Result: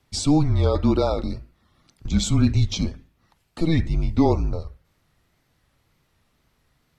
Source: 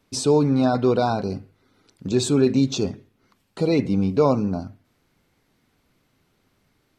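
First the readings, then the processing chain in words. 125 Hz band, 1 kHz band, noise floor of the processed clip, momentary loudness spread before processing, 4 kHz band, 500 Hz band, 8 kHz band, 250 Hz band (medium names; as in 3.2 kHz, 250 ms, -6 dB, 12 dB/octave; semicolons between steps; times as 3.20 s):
+4.0 dB, -4.0 dB, -68 dBFS, 13 LU, +0.5 dB, -5.5 dB, -0.5 dB, -1.5 dB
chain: wow and flutter 78 cents; frequency shift -160 Hz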